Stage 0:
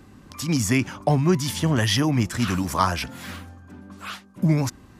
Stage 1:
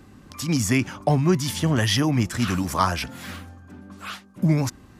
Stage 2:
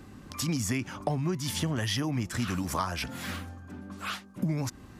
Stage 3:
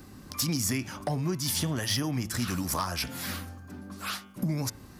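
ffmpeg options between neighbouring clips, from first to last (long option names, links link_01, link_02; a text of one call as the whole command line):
ffmpeg -i in.wav -af "bandreject=frequency=980:width=27" out.wav
ffmpeg -i in.wav -af "acompressor=threshold=-27dB:ratio=6" out.wav
ffmpeg -i in.wav -af "aexciter=amount=2.2:drive=3.9:freq=4200,volume=21dB,asoftclip=hard,volume=-21dB,bandreject=frequency=109.8:width_type=h:width=4,bandreject=frequency=219.6:width_type=h:width=4,bandreject=frequency=329.4:width_type=h:width=4,bandreject=frequency=439.2:width_type=h:width=4,bandreject=frequency=549:width_type=h:width=4,bandreject=frequency=658.8:width_type=h:width=4,bandreject=frequency=768.6:width_type=h:width=4,bandreject=frequency=878.4:width_type=h:width=4,bandreject=frequency=988.2:width_type=h:width=4,bandreject=frequency=1098:width_type=h:width=4,bandreject=frequency=1207.8:width_type=h:width=4,bandreject=frequency=1317.6:width_type=h:width=4,bandreject=frequency=1427.4:width_type=h:width=4,bandreject=frequency=1537.2:width_type=h:width=4,bandreject=frequency=1647:width_type=h:width=4,bandreject=frequency=1756.8:width_type=h:width=4,bandreject=frequency=1866.6:width_type=h:width=4,bandreject=frequency=1976.4:width_type=h:width=4,bandreject=frequency=2086.2:width_type=h:width=4,bandreject=frequency=2196:width_type=h:width=4,bandreject=frequency=2305.8:width_type=h:width=4,bandreject=frequency=2415.6:width_type=h:width=4,bandreject=frequency=2525.4:width_type=h:width=4,bandreject=frequency=2635.2:width_type=h:width=4,bandreject=frequency=2745:width_type=h:width=4,bandreject=frequency=2854.8:width_type=h:width=4,bandreject=frequency=2964.6:width_type=h:width=4,bandreject=frequency=3074.4:width_type=h:width=4,bandreject=frequency=3184.2:width_type=h:width=4,bandreject=frequency=3294:width_type=h:width=4,bandreject=frequency=3403.8:width_type=h:width=4,bandreject=frequency=3513.6:width_type=h:width=4,bandreject=frequency=3623.4:width_type=h:width=4" out.wav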